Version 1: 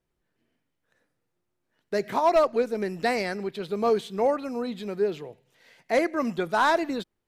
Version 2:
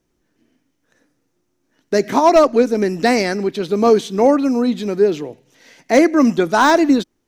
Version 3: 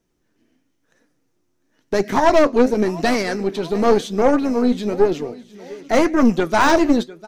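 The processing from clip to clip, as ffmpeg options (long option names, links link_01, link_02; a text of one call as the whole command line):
ffmpeg -i in.wav -af "equalizer=frequency=280:width_type=o:width=0.6:gain=10.5,deesser=0.65,equalizer=frequency=6000:width_type=o:width=0.44:gain=9.5,volume=8.5dB" out.wav
ffmpeg -i in.wav -af "aecho=1:1:700|1400|2100:0.106|0.0445|0.0187,flanger=delay=4.1:depth=8.5:regen=66:speed=0.96:shape=triangular,aeval=exprs='(tanh(4.47*val(0)+0.65)-tanh(0.65))/4.47':channel_layout=same,volume=6dB" out.wav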